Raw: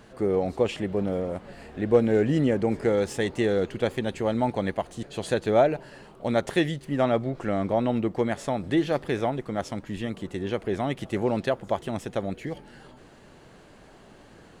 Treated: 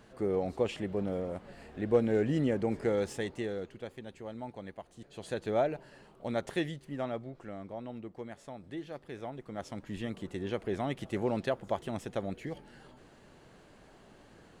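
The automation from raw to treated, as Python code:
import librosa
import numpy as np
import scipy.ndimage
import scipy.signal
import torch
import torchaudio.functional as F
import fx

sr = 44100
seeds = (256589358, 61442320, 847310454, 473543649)

y = fx.gain(x, sr, db=fx.line((3.05, -6.5), (3.86, -17.0), (4.85, -17.0), (5.46, -9.0), (6.62, -9.0), (7.65, -17.5), (9.04, -17.5), (9.94, -6.0)))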